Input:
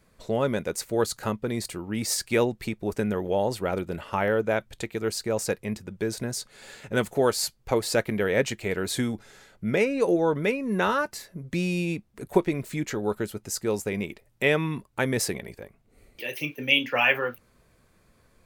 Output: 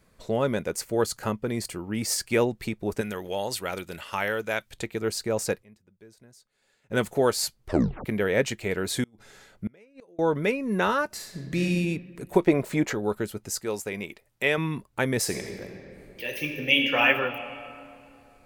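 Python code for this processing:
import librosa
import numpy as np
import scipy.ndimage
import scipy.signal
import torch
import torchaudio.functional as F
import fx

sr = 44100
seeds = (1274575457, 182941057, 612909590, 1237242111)

y = fx.notch(x, sr, hz=3800.0, q=12.0, at=(0.67, 2.44))
y = fx.tilt_shelf(y, sr, db=-8.0, hz=1400.0, at=(3.01, 4.73))
y = fx.gate_flip(y, sr, shuts_db=-20.0, range_db=-32, at=(9.03, 10.19))
y = fx.reverb_throw(y, sr, start_s=11.06, length_s=0.57, rt60_s=1.6, drr_db=0.0)
y = fx.peak_eq(y, sr, hz=700.0, db=13.5, octaves=2.2, at=(12.47, 12.93))
y = fx.low_shelf(y, sr, hz=390.0, db=-8.0, at=(13.6, 14.58))
y = fx.reverb_throw(y, sr, start_s=15.21, length_s=1.81, rt60_s=2.7, drr_db=3.0)
y = fx.edit(y, sr, fx.fade_down_up(start_s=5.51, length_s=1.51, db=-23.0, fade_s=0.12, curve='log'),
    fx.tape_stop(start_s=7.61, length_s=0.44), tone=tone)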